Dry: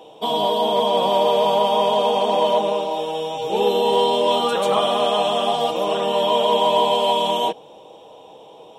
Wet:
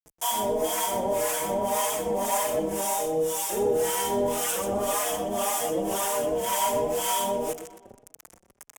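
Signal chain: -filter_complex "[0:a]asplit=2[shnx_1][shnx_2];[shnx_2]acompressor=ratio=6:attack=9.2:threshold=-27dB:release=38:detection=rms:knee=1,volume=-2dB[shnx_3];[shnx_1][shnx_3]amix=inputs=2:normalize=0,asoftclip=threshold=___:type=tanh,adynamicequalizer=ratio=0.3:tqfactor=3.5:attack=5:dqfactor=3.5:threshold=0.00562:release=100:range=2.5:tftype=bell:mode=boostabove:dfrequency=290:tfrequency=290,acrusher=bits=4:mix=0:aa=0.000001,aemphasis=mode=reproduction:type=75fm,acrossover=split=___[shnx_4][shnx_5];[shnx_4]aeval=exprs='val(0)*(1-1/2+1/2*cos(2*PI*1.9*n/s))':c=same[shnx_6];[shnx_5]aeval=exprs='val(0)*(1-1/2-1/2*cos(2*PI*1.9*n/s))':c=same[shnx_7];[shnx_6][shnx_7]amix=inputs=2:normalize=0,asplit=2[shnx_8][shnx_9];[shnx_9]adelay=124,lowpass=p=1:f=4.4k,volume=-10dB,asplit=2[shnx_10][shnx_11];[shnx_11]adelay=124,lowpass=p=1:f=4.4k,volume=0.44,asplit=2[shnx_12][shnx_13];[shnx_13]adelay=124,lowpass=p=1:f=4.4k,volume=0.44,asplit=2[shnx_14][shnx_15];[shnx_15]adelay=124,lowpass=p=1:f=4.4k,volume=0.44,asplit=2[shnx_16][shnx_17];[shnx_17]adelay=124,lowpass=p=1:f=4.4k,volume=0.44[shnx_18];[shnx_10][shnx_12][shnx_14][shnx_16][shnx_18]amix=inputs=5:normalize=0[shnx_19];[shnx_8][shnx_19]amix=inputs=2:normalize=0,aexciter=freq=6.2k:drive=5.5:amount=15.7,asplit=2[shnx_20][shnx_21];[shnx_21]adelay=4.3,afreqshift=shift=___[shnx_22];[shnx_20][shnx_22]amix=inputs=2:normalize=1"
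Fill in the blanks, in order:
-15.5dB, 730, 1.6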